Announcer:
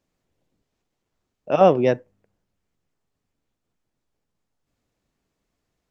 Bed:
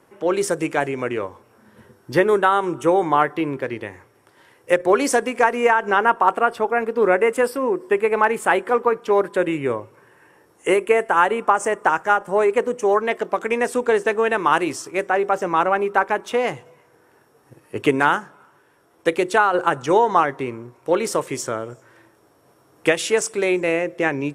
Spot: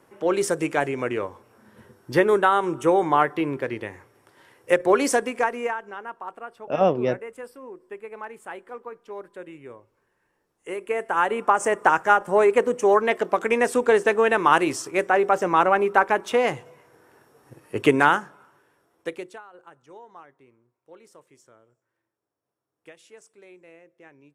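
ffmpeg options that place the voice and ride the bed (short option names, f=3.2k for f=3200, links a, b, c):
-filter_complex "[0:a]adelay=5200,volume=-5dB[a];[1:a]volume=17.5dB,afade=t=out:st=5.06:d=0.85:silence=0.133352,afade=t=in:st=10.62:d=1.2:silence=0.105925,afade=t=out:st=18.01:d=1.4:silence=0.0334965[b];[a][b]amix=inputs=2:normalize=0"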